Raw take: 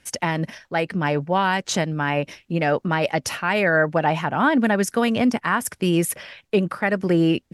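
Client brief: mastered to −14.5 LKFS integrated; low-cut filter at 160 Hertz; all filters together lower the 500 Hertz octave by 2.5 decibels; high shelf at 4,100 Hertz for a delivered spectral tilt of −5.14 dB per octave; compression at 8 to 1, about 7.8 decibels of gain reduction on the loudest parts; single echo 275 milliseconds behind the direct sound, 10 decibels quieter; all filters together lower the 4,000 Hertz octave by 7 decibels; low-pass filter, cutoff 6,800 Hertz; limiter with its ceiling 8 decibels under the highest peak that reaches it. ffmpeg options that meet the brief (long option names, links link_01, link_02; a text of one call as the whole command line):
ffmpeg -i in.wav -af "highpass=160,lowpass=6800,equalizer=frequency=500:width_type=o:gain=-3,equalizer=frequency=4000:width_type=o:gain=-6.5,highshelf=frequency=4100:gain=-6.5,acompressor=threshold=-24dB:ratio=8,alimiter=limit=-19.5dB:level=0:latency=1,aecho=1:1:275:0.316,volume=16.5dB" out.wav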